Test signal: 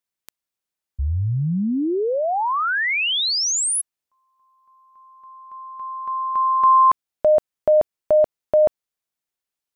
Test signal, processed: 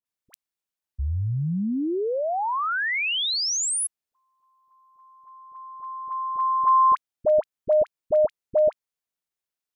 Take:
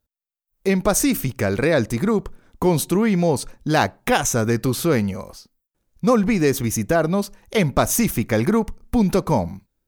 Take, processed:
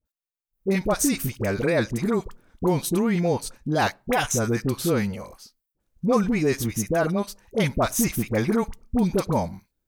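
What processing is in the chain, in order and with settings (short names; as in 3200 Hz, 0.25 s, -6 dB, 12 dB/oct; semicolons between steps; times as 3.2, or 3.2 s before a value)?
dispersion highs, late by 56 ms, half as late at 900 Hz; gain -4 dB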